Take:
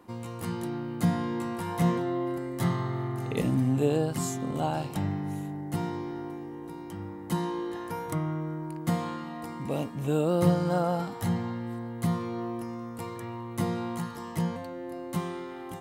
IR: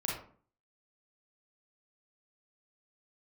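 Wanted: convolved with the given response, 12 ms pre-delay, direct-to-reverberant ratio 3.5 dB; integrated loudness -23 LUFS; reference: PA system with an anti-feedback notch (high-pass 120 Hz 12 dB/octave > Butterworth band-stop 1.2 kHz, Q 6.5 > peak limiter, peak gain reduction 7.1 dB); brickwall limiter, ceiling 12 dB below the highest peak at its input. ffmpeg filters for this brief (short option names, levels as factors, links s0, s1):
-filter_complex "[0:a]alimiter=limit=0.0841:level=0:latency=1,asplit=2[s0][s1];[1:a]atrim=start_sample=2205,adelay=12[s2];[s1][s2]afir=irnorm=-1:irlink=0,volume=0.422[s3];[s0][s3]amix=inputs=2:normalize=0,highpass=120,asuperstop=centerf=1200:order=8:qfactor=6.5,volume=3.55,alimiter=limit=0.211:level=0:latency=1"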